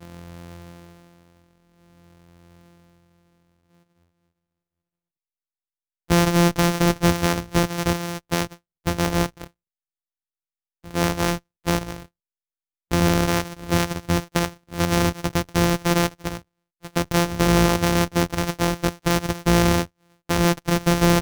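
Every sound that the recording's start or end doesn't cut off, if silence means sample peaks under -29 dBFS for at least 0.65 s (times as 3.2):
6.1–9.44
10.91–12.02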